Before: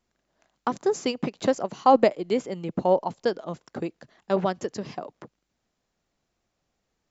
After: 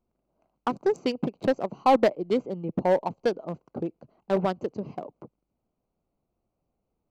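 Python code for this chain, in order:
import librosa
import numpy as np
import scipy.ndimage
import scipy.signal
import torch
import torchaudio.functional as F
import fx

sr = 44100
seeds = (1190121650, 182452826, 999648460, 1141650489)

p1 = fx.wiener(x, sr, points=25)
p2 = 10.0 ** (-17.5 / 20.0) * (np.abs((p1 / 10.0 ** (-17.5 / 20.0) + 3.0) % 4.0 - 2.0) - 1.0)
p3 = p1 + F.gain(torch.from_numpy(p2), -7.5).numpy()
y = F.gain(torch.from_numpy(p3), -2.5).numpy()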